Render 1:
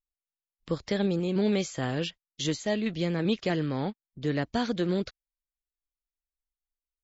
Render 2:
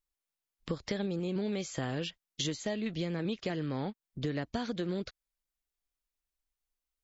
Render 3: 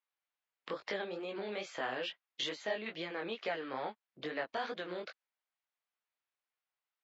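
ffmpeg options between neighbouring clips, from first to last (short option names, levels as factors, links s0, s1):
-af "acompressor=threshold=0.0178:ratio=6,volume=1.5"
-af "flanger=delay=18:depth=5.6:speed=2.3,highpass=660,lowpass=2700,volume=2.37"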